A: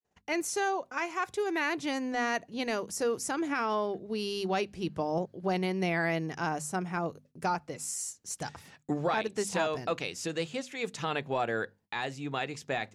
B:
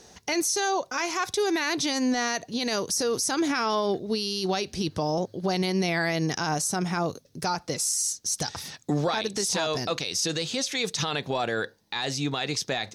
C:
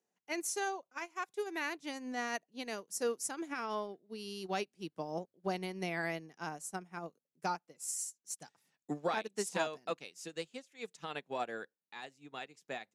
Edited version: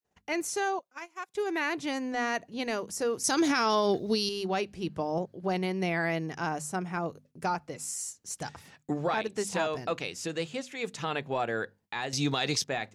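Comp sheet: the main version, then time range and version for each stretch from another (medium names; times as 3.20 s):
A
0.79–1.35 s: from C
3.24–4.29 s: from B
12.13–12.64 s: from B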